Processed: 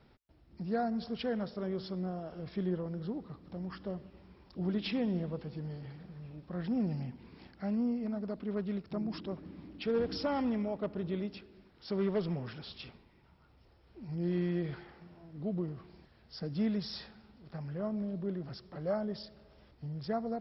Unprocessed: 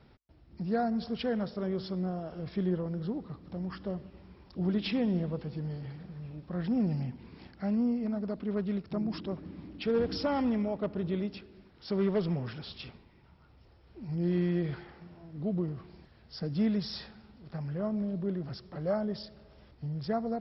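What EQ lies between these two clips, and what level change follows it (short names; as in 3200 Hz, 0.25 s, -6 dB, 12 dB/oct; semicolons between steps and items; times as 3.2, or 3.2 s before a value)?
bell 95 Hz -3 dB 1.8 oct; -2.5 dB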